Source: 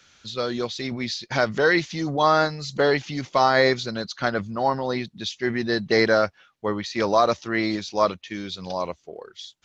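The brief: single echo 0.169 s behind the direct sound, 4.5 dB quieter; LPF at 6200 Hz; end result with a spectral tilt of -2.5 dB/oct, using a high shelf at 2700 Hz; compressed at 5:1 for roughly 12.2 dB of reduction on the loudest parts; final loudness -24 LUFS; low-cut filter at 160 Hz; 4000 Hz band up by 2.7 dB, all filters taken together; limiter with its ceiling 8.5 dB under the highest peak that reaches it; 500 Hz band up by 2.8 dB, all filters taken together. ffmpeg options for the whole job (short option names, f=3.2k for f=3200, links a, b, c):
-af "highpass=160,lowpass=6.2k,equalizer=f=500:t=o:g=3.5,highshelf=f=2.7k:g=-3,equalizer=f=4k:t=o:g=6,acompressor=threshold=-26dB:ratio=5,alimiter=limit=-20.5dB:level=0:latency=1,aecho=1:1:169:0.596,volume=6.5dB"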